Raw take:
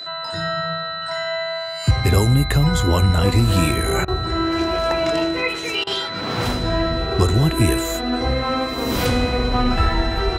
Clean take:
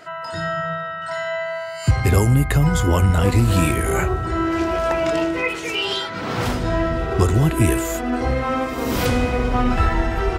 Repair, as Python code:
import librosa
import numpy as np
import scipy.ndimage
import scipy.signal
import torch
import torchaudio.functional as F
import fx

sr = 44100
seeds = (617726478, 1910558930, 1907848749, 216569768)

y = fx.notch(x, sr, hz=4000.0, q=30.0)
y = fx.fix_interpolate(y, sr, at_s=(4.05, 5.84), length_ms=28.0)